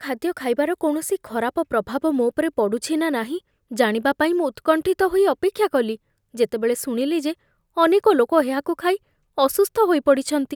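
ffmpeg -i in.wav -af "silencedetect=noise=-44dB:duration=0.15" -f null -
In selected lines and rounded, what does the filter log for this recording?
silence_start: 3.39
silence_end: 3.71 | silence_duration: 0.32
silence_start: 5.96
silence_end: 6.34 | silence_duration: 0.38
silence_start: 7.34
silence_end: 7.77 | silence_duration: 0.43
silence_start: 8.97
silence_end: 9.38 | silence_duration: 0.41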